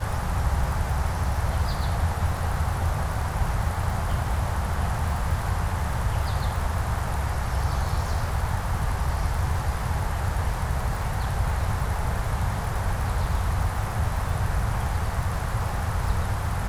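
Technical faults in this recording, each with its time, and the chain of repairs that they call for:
surface crackle 60 per second −31 dBFS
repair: click removal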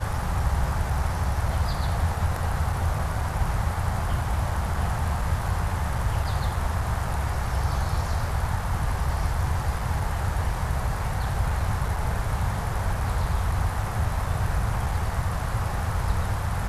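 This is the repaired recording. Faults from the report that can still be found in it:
none of them is left

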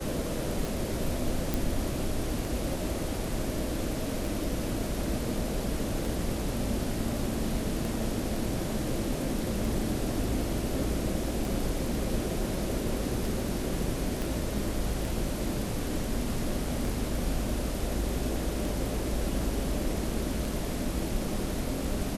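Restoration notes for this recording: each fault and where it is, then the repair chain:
scratch tick 33 1/3 rpm
0:01.54: click
0:14.22: click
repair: click removal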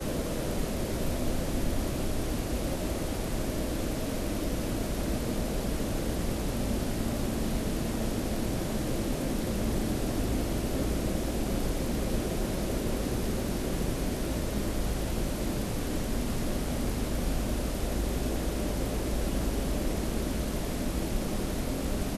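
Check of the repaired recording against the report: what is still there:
0:14.22: click

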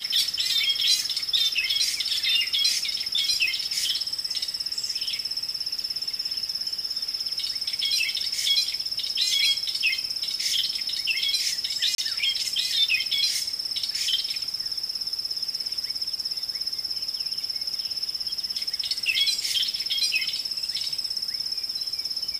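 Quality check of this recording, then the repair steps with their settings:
0:08.89: drop-out 3.9 ms
0:11.95–0:11.98: drop-out 32 ms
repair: repair the gap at 0:08.89, 3.9 ms
repair the gap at 0:11.95, 32 ms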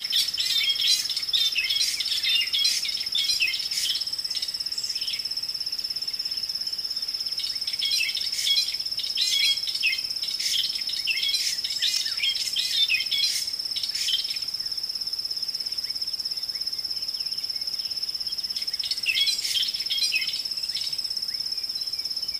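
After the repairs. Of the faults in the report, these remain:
none of them is left

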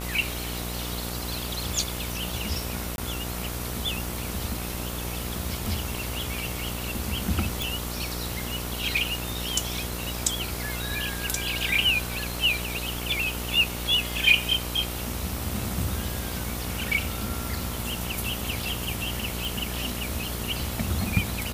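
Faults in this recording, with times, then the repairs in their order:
mains buzz 60 Hz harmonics 24 −34 dBFS
0:02.96–0:02.98: drop-out 21 ms
0:07.62: click
0:19.45: click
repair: click removal
hum removal 60 Hz, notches 24
repair the gap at 0:02.96, 21 ms

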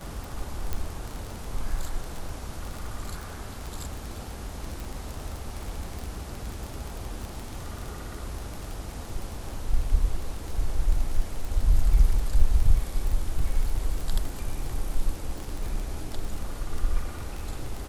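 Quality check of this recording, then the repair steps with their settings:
surface crackle 24 per second −29 dBFS
0:00.73: click −15 dBFS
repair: click removal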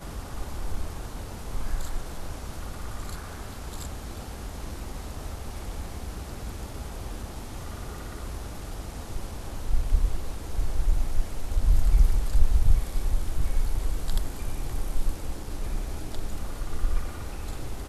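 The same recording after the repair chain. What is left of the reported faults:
none of them is left

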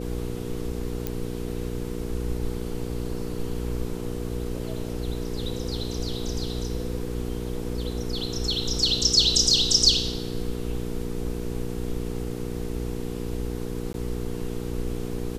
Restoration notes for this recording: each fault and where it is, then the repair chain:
mains hum 60 Hz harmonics 8 −32 dBFS
0:01.07: click −13 dBFS
0:13.93–0:13.94: drop-out 12 ms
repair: click removal
hum removal 60 Hz, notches 8
repair the gap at 0:13.93, 12 ms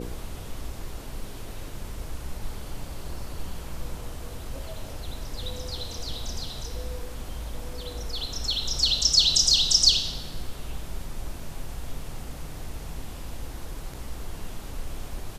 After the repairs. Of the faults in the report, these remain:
none of them is left

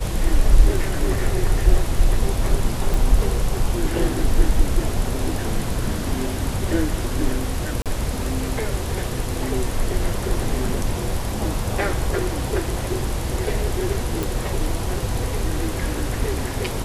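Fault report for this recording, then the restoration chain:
0:02.94: click
0:07.82–0:07.86: drop-out 37 ms
0:14.23: click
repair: click removal
repair the gap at 0:07.82, 37 ms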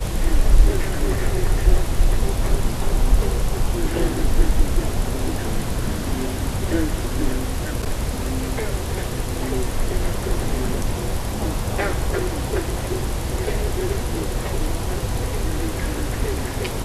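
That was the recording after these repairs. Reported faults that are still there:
none of them is left

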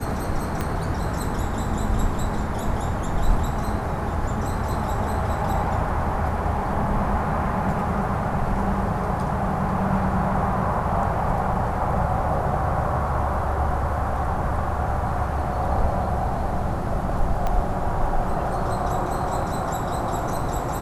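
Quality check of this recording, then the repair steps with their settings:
0:00.61: click −12 dBFS
0:17.47: click −13 dBFS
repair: click removal

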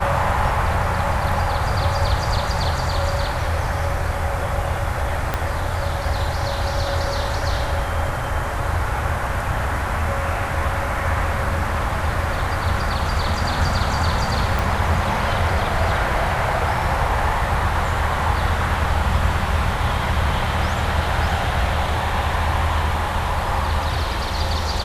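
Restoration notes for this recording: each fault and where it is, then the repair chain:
0:05.34: click −7 dBFS
0:14.59: click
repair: click removal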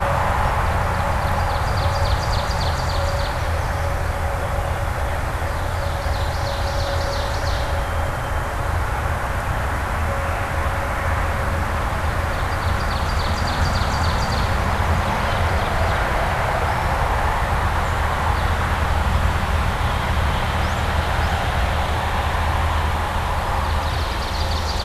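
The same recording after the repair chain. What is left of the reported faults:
0:05.34: click

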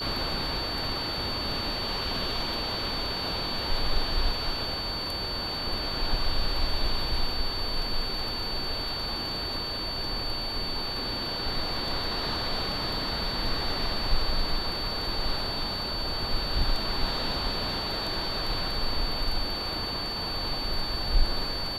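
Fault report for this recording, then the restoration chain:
whistle 4,500 Hz −32 dBFS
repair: notch filter 4,500 Hz, Q 30

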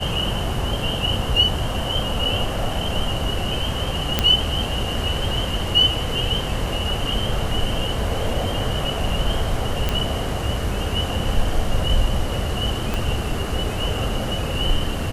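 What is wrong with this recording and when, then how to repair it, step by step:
0:04.19: click −2 dBFS
0:09.89: click −7 dBFS
0:12.94: click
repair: click removal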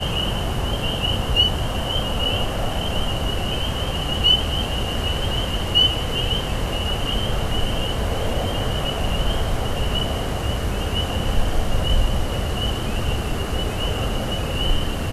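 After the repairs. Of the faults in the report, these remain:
0:12.94: click

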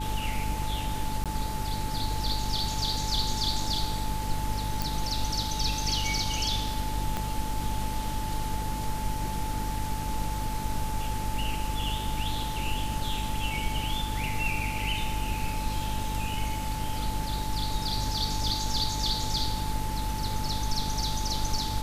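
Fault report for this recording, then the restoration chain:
mains hum 50 Hz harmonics 6 −34 dBFS
whistle 870 Hz −35 dBFS
0:01.24–0:01.26: drop-out 17 ms
0:04.82: click
0:07.17: click −16 dBFS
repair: click removal
notch filter 870 Hz, Q 30
hum removal 50 Hz, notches 6
repair the gap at 0:01.24, 17 ms

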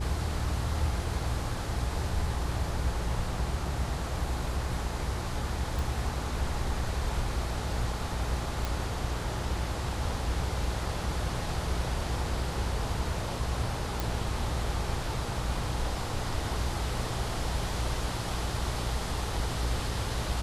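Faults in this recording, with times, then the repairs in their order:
mains hum 60 Hz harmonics 7 −36 dBFS
0:05.79: click
0:08.65: click
0:14.00: click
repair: click removal
hum removal 60 Hz, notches 7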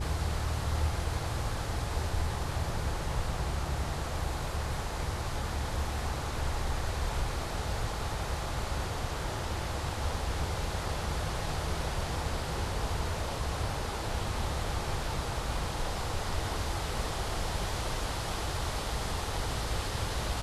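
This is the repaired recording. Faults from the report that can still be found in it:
none of them is left

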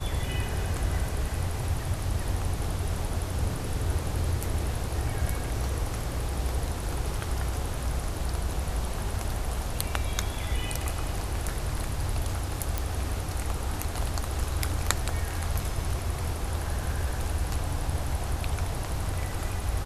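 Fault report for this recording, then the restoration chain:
0:12.78: click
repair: click removal

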